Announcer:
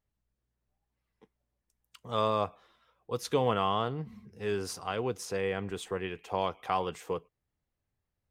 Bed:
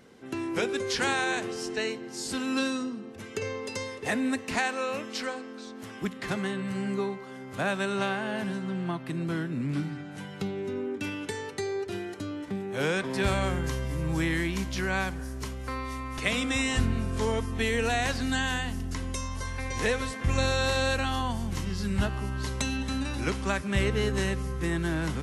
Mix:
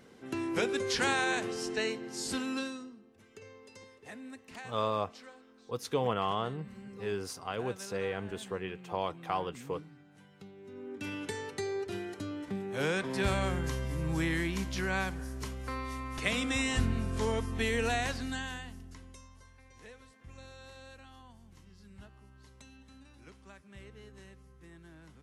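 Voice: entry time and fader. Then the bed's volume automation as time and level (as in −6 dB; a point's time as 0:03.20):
2.60 s, −3.0 dB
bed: 0:02.34 −2 dB
0:03.07 −18.5 dB
0:10.58 −18.5 dB
0:11.14 −3.5 dB
0:17.92 −3.5 dB
0:19.62 −25 dB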